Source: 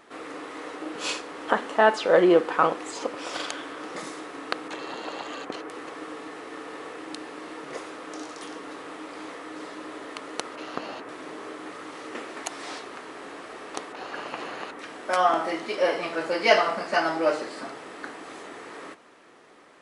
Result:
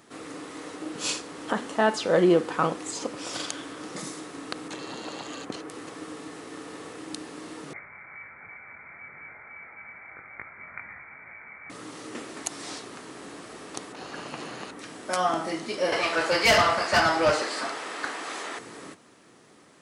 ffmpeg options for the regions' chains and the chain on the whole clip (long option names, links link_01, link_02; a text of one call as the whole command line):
ffmpeg -i in.wav -filter_complex "[0:a]asettb=1/sr,asplit=3[link_01][link_02][link_03];[link_01]atrim=end=7.734[link_04];[link_02]atrim=start=7.73:end=11.7,asetpts=PTS-STARTPTS,afade=type=in:duration=0.004:curve=qsin,afade=type=out:start_time=3.966:duration=0.004:curve=qsin,flanger=delay=18.5:depth=3.8:speed=1.9,lowpass=frequency=2200:width_type=q:width=0.5098,lowpass=frequency=2200:width_type=q:width=0.6013,lowpass=frequency=2200:width_type=q:width=0.9,lowpass=frequency=2200:width_type=q:width=2.563,afreqshift=-2600[link_05];[link_03]atrim=start=11.696[link_06];[link_04][link_05]acrossfade=duration=0.004:curve1=hsin:curve2=qsin[link_07];[link_07][link_06]acrossfade=duration=0.004:curve1=qsin:curve2=hsin,asettb=1/sr,asplit=3[link_08][link_09][link_10];[link_08]atrim=end=15.924[link_11];[link_09]atrim=start=15.92:end=18.59,asetpts=PTS-STARTPTS,afade=type=in:duration=0.004:curve=qsin,afade=type=out:start_time=2.666:duration=0.004:curve=qsin,highpass=frequency=610:poles=1,asplit=2[link_12][link_13];[link_13]highpass=frequency=720:poles=1,volume=20dB,asoftclip=type=tanh:threshold=-6dB[link_14];[link_12][link_14]amix=inputs=2:normalize=0,lowpass=frequency=2500:poles=1,volume=-6dB[link_15];[link_10]atrim=start=18.586[link_16];[link_11][link_15]acrossfade=duration=0.004:curve1=hsin:curve2=qsin[link_17];[link_17][link_16]acrossfade=duration=0.004:curve1=qsin:curve2=hsin,highpass=84,bass=frequency=250:gain=15,treble=frequency=4000:gain=11,alimiter=level_in=4.5dB:limit=-1dB:release=50:level=0:latency=1,volume=-9dB" out.wav